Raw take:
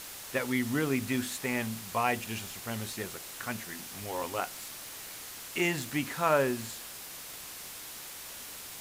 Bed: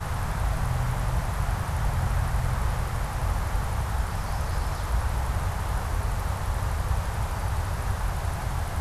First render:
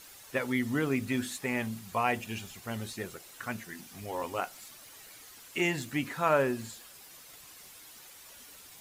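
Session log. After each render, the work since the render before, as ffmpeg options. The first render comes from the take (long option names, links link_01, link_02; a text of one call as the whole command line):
ffmpeg -i in.wav -af "afftdn=noise_reduction=10:noise_floor=-44" out.wav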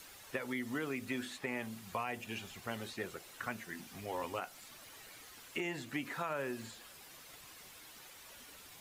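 ffmpeg -i in.wav -filter_complex "[0:a]alimiter=limit=-22.5dB:level=0:latency=1:release=331,acrossover=split=270|1400|4100[link_01][link_02][link_03][link_04];[link_01]acompressor=threshold=-50dB:ratio=4[link_05];[link_02]acompressor=threshold=-38dB:ratio=4[link_06];[link_03]acompressor=threshold=-41dB:ratio=4[link_07];[link_04]acompressor=threshold=-56dB:ratio=4[link_08];[link_05][link_06][link_07][link_08]amix=inputs=4:normalize=0" out.wav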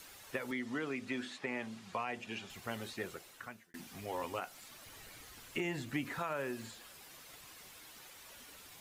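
ffmpeg -i in.wav -filter_complex "[0:a]asettb=1/sr,asplit=3[link_01][link_02][link_03];[link_01]atrim=end=0.514[link_04];[link_02]atrim=start=0.51:end=2.5,asetpts=PTS-STARTPTS,afade=type=in:duration=0.004:curve=qsin,afade=type=out:start_time=1.986:duration=0.004:curve=qsin,highpass=130,lowpass=6500[link_05];[link_03]atrim=start=2.496[link_06];[link_04][link_05]acrossfade=duration=0.004:curve1=hsin:curve2=qsin[link_07];[link_07][link_06]acrossfade=duration=0.004:curve1=qsin:curve2=hsin,asettb=1/sr,asplit=3[link_08][link_09][link_10];[link_08]atrim=end=4.864[link_11];[link_09]atrim=start=4.86:end=6.19,asetpts=PTS-STARTPTS,afade=type=in:duration=0.004:curve=qsin,afade=type=out:start_time=1.326:duration=0.004:curve=qsin,lowshelf=frequency=150:gain=11[link_12];[link_10]atrim=start=6.186[link_13];[link_11][link_12]acrossfade=duration=0.004:curve1=hsin:curve2=qsin[link_14];[link_14][link_13]acrossfade=duration=0.004:curve1=qsin:curve2=hsin,asplit=2[link_15][link_16];[link_15]atrim=end=3.74,asetpts=PTS-STARTPTS,afade=type=out:start_time=3.11:duration=0.63[link_17];[link_16]atrim=start=3.74,asetpts=PTS-STARTPTS,afade=type=in:duration=0.004:curve=hsin[link_18];[link_17][link_18]concat=n=2:v=0:a=1" out.wav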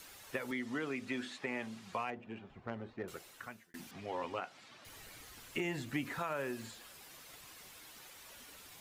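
ffmpeg -i in.wav -filter_complex "[0:a]asettb=1/sr,asplit=3[link_01][link_02][link_03];[link_01]atrim=end=2.104[link_04];[link_02]atrim=start=2.1:end=3.08,asetpts=PTS-STARTPTS,afade=type=in:duration=0.004:curve=qsin,afade=type=out:start_time=0.976:duration=0.004:curve=qsin,adynamicsmooth=sensitivity=1.5:basefreq=1200[link_05];[link_03]atrim=start=3.076[link_06];[link_04][link_05]acrossfade=duration=0.004:curve1=hsin:curve2=qsin[link_07];[link_07][link_06]acrossfade=duration=0.004:curve1=qsin:curve2=hsin,asettb=1/sr,asplit=3[link_08][link_09][link_10];[link_08]atrim=end=3.914[link_11];[link_09]atrim=start=3.91:end=4.85,asetpts=PTS-STARTPTS,afade=type=in:duration=0.004:curve=qsin,afade=type=out:start_time=0.936:duration=0.004:curve=qsin,highpass=100,lowpass=4300[link_12];[link_10]atrim=start=4.846[link_13];[link_11][link_12]acrossfade=duration=0.004:curve1=hsin:curve2=qsin[link_14];[link_14][link_13]acrossfade=duration=0.004:curve1=qsin:curve2=hsin" out.wav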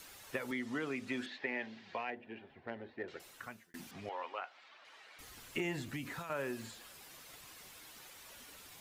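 ffmpeg -i in.wav -filter_complex "[0:a]asettb=1/sr,asplit=3[link_01][link_02][link_03];[link_01]atrim=end=1.264[link_04];[link_02]atrim=start=1.26:end=3.2,asetpts=PTS-STARTPTS,afade=type=in:duration=0.004:curve=qsin,afade=type=out:start_time=1.936:duration=0.004:curve=qsin,highpass=110,equalizer=frequency=120:width_type=q:width=4:gain=-8,equalizer=frequency=190:width_type=q:width=4:gain=-10,equalizer=frequency=1200:width_type=q:width=4:gain=-10,equalizer=frequency=1800:width_type=q:width=4:gain=6,lowpass=frequency=4700:width=0.5412,lowpass=frequency=4700:width=1.3066[link_05];[link_03]atrim=start=3.196[link_06];[link_04][link_05]acrossfade=duration=0.004:curve1=hsin:curve2=qsin[link_07];[link_07][link_06]acrossfade=duration=0.004:curve1=qsin:curve2=hsin,asettb=1/sr,asplit=3[link_08][link_09][link_10];[link_08]atrim=end=4.094[link_11];[link_09]atrim=start=4.09:end=5.19,asetpts=PTS-STARTPTS,afade=type=in:duration=0.004:curve=qsin,afade=type=out:start_time=1.096:duration=0.004:curve=qsin,highpass=650,lowpass=3500[link_12];[link_10]atrim=start=5.186[link_13];[link_11][link_12]acrossfade=duration=0.004:curve1=hsin:curve2=qsin[link_14];[link_14][link_13]acrossfade=duration=0.004:curve1=qsin:curve2=hsin,asettb=1/sr,asplit=3[link_15][link_16][link_17];[link_15]atrim=end=5.884[link_18];[link_16]atrim=start=5.88:end=6.3,asetpts=PTS-STARTPTS,afade=type=in:duration=0.004:curve=qsin,afade=type=out:start_time=0.416:duration=0.004:curve=qsin,acrossover=split=180|3000[link_19][link_20][link_21];[link_20]acompressor=threshold=-42dB:ratio=6:attack=3.2:release=140:knee=2.83:detection=peak[link_22];[link_19][link_22][link_21]amix=inputs=3:normalize=0[link_23];[link_17]atrim=start=6.296[link_24];[link_18][link_23]acrossfade=duration=0.004:curve1=hsin:curve2=qsin[link_25];[link_25][link_24]acrossfade=duration=0.004:curve1=qsin:curve2=hsin" out.wav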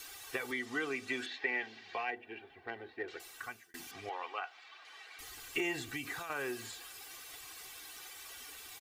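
ffmpeg -i in.wav -af "tiltshelf=frequency=670:gain=-4,aecho=1:1:2.6:0.67" out.wav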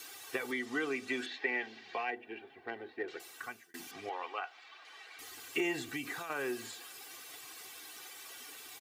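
ffmpeg -i in.wav -af "highpass=210,lowshelf=frequency=310:gain=8" out.wav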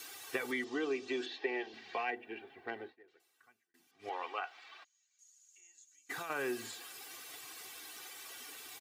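ffmpeg -i in.wav -filter_complex "[0:a]asettb=1/sr,asplit=3[link_01][link_02][link_03];[link_01]atrim=end=0.644[link_04];[link_02]atrim=start=0.64:end=1.74,asetpts=PTS-STARTPTS,afade=type=in:duration=0.004:curve=qsin,afade=type=out:start_time=1.096:duration=0.004:curve=qsin,highpass=140,equalizer=frequency=150:width_type=q:width=4:gain=-4,equalizer=frequency=220:width_type=q:width=4:gain=-9,equalizer=frequency=360:width_type=q:width=4:gain=6,equalizer=frequency=1400:width_type=q:width=4:gain=-8,equalizer=frequency=2100:width_type=q:width=4:gain=-9,lowpass=frequency=6600:width=0.5412,lowpass=frequency=6600:width=1.3066[link_05];[link_03]atrim=start=1.736[link_06];[link_04][link_05]acrossfade=duration=0.004:curve1=hsin:curve2=qsin[link_07];[link_07][link_06]acrossfade=duration=0.004:curve1=qsin:curve2=hsin,asplit=3[link_08][link_09][link_10];[link_08]afade=type=out:start_time=4.83:duration=0.02[link_11];[link_09]bandpass=frequency=6700:width_type=q:width=18,afade=type=in:start_time=4.83:duration=0.02,afade=type=out:start_time=6.09:duration=0.02[link_12];[link_10]afade=type=in:start_time=6.09:duration=0.02[link_13];[link_11][link_12][link_13]amix=inputs=3:normalize=0,asplit=3[link_14][link_15][link_16];[link_14]atrim=end=2.96,asetpts=PTS-STARTPTS,afade=type=out:start_time=2.84:duration=0.12:silence=0.0707946[link_17];[link_15]atrim=start=2.96:end=3.99,asetpts=PTS-STARTPTS,volume=-23dB[link_18];[link_16]atrim=start=3.99,asetpts=PTS-STARTPTS,afade=type=in:duration=0.12:silence=0.0707946[link_19];[link_17][link_18][link_19]concat=n=3:v=0:a=1" out.wav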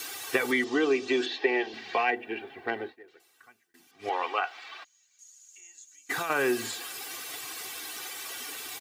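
ffmpeg -i in.wav -af "volume=10.5dB" out.wav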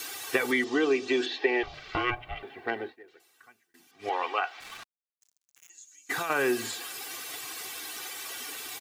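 ffmpeg -i in.wav -filter_complex "[0:a]asettb=1/sr,asplit=3[link_01][link_02][link_03];[link_01]atrim=end=1.634[link_04];[link_02]atrim=start=1.63:end=2.43,asetpts=PTS-STARTPTS,afade=type=in:duration=0.004:curve=qsin,afade=type=out:start_time=0.796:duration=0.004:curve=qsin,aeval=exprs='val(0)*sin(2*PI*370*n/s)':channel_layout=same[link_05];[link_03]atrim=start=2.426[link_06];[link_04][link_05]acrossfade=duration=0.004:curve1=hsin:curve2=qsin[link_07];[link_07][link_06]acrossfade=duration=0.004:curve1=qsin:curve2=hsin,asettb=1/sr,asplit=3[link_08][link_09][link_10];[link_08]atrim=end=4.604[link_11];[link_09]atrim=start=4.6:end=5.7,asetpts=PTS-STARTPTS,afade=type=in:duration=0.004:curve=qsin,afade=type=out:start_time=1.096:duration=0.004:curve=qsin,acrusher=bits=6:mix=0:aa=0.5[link_12];[link_10]atrim=start=5.696[link_13];[link_11][link_12]acrossfade=duration=0.004:curve1=hsin:curve2=qsin[link_14];[link_14][link_13]acrossfade=duration=0.004:curve1=qsin:curve2=hsin" out.wav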